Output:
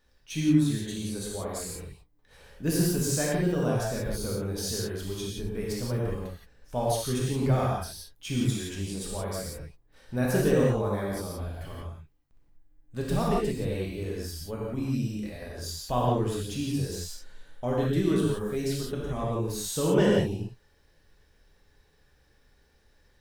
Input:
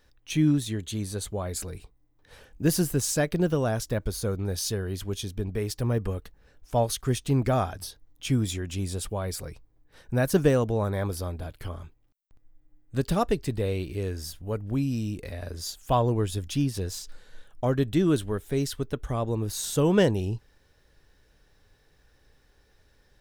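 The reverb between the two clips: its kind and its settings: non-linear reverb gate 0.2 s flat, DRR -5 dB; gain -7 dB

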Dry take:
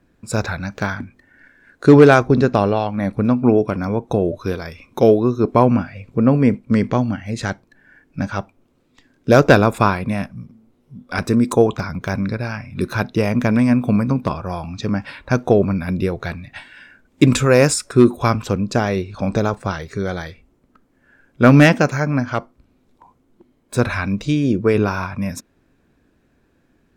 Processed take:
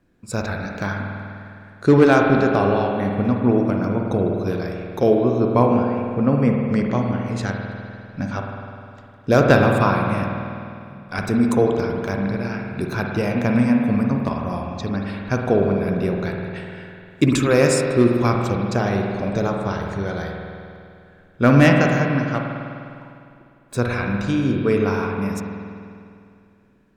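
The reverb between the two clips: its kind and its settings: spring tank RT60 2.5 s, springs 50 ms, chirp 30 ms, DRR 1 dB; gain -4.5 dB

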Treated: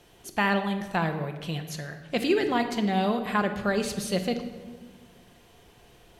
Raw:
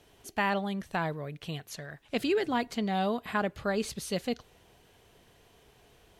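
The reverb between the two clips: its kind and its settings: shoebox room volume 1300 m³, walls mixed, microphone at 0.87 m; gain +3.5 dB

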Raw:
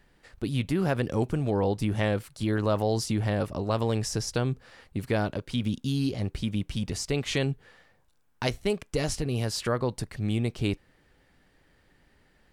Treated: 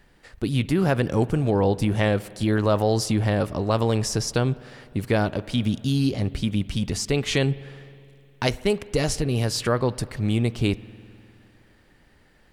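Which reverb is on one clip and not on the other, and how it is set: spring tank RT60 2.6 s, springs 51 ms, chirp 50 ms, DRR 18.5 dB; gain +5 dB

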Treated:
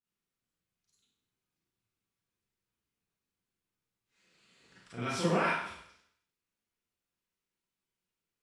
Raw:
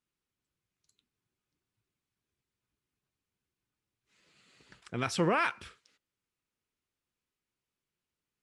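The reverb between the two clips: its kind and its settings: Schroeder reverb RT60 0.7 s, combs from 33 ms, DRR -10 dB; gain -11.5 dB

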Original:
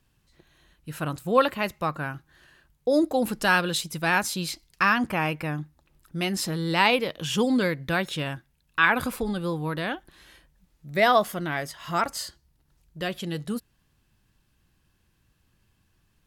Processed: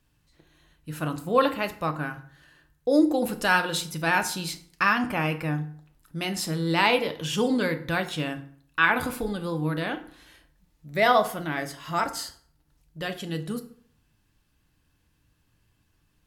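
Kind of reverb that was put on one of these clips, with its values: FDN reverb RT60 0.55 s, low-frequency decay 1.05×, high-frequency decay 0.7×, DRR 6.5 dB; gain -1.5 dB

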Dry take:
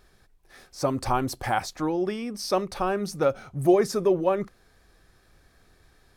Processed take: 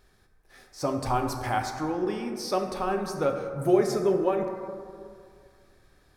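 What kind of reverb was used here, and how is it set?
plate-style reverb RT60 2.2 s, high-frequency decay 0.35×, DRR 3.5 dB; gain -3.5 dB

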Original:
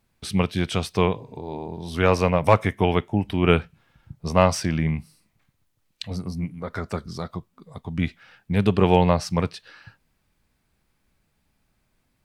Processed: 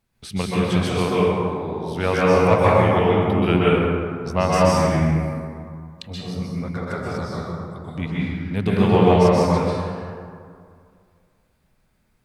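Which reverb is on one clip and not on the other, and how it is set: plate-style reverb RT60 2.2 s, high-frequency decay 0.45×, pre-delay 0.115 s, DRR -7 dB; gain -4 dB

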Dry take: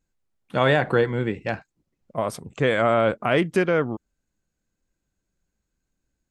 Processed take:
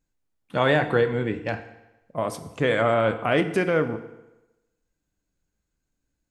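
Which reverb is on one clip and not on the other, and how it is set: FDN reverb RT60 1 s, low-frequency decay 0.9×, high-frequency decay 0.9×, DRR 8.5 dB; gain -1.5 dB

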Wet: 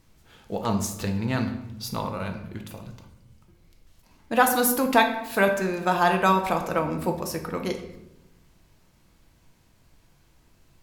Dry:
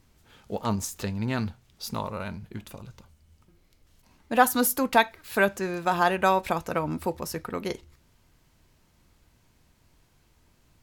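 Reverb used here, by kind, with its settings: shoebox room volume 320 m³, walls mixed, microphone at 0.67 m; gain +1 dB

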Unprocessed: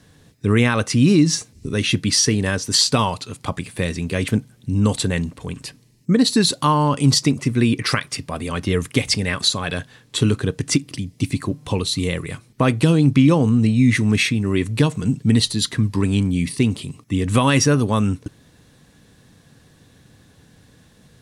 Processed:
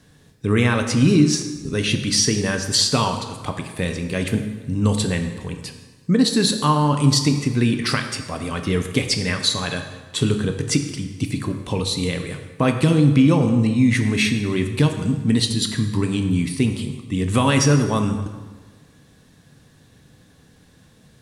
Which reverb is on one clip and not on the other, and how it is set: plate-style reverb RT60 1.4 s, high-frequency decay 0.75×, DRR 5.5 dB; gain -2 dB

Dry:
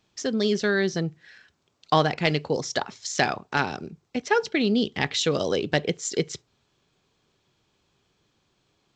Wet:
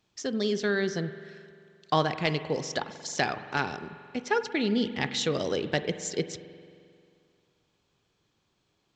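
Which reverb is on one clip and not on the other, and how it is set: spring tank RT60 2.3 s, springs 44 ms, chirp 65 ms, DRR 11.5 dB; gain -4.5 dB

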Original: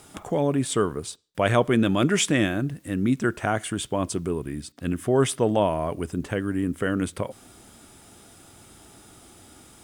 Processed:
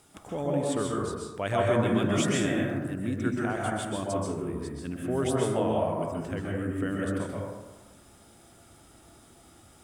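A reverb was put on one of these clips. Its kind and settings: plate-style reverb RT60 1.2 s, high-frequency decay 0.35×, pre-delay 0.115 s, DRR -3 dB; gain -9.5 dB

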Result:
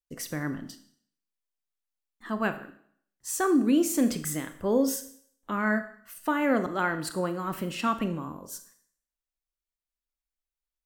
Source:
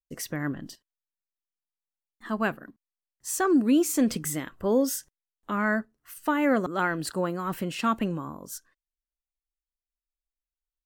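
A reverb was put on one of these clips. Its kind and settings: Schroeder reverb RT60 0.6 s, combs from 26 ms, DRR 9.5 dB; gain -1.5 dB

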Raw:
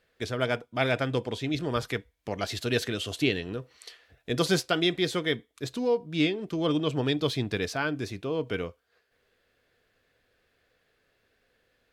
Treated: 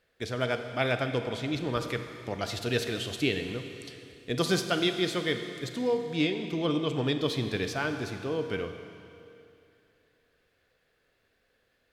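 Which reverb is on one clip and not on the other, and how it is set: Schroeder reverb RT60 2.7 s, combs from 32 ms, DRR 7 dB; gain -2 dB

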